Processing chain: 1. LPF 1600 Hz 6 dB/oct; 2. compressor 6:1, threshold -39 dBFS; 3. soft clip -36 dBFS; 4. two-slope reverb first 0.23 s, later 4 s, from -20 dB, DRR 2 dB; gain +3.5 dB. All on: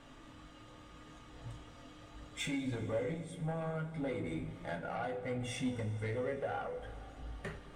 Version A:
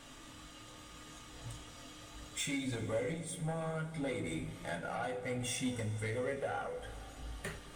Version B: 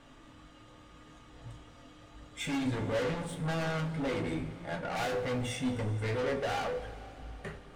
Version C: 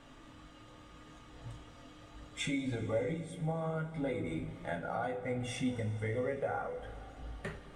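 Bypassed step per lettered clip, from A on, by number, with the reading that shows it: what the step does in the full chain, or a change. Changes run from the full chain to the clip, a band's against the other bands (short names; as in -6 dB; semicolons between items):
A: 1, 8 kHz band +9.0 dB; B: 2, mean gain reduction 9.0 dB; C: 3, distortion -16 dB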